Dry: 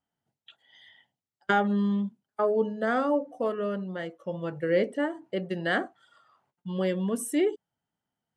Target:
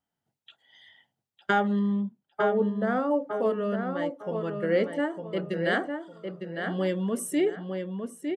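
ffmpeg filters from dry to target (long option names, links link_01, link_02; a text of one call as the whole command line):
ffmpeg -i in.wav -filter_complex "[0:a]asettb=1/sr,asplit=3[link_01][link_02][link_03];[link_01]atrim=end=1.794[link_04];[link_02]atrim=start=1.79:end=3.11,asetpts=PTS-STARTPTS,afade=type=in:duration=0.004:curve=qsin,afade=type=out:start_time=1.316:duration=0.004:curve=qsin,highshelf=frequency=2300:gain=-10.5[link_05];[link_03]atrim=start=3.106[link_06];[link_04][link_05]acrossfade=duration=0.004:curve1=hsin:curve2=qsin[link_07];[link_07][link_06]acrossfade=duration=0.004:curve1=qsin:curve2=hsin,asplit=2[link_08][link_09];[link_09]adelay=906,lowpass=frequency=3100:poles=1,volume=-5.5dB,asplit=2[link_10][link_11];[link_11]adelay=906,lowpass=frequency=3100:poles=1,volume=0.28,asplit=2[link_12][link_13];[link_13]adelay=906,lowpass=frequency=3100:poles=1,volume=0.28,asplit=2[link_14][link_15];[link_15]adelay=906,lowpass=frequency=3100:poles=1,volume=0.28[link_16];[link_08][link_10][link_12][link_14][link_16]amix=inputs=5:normalize=0" out.wav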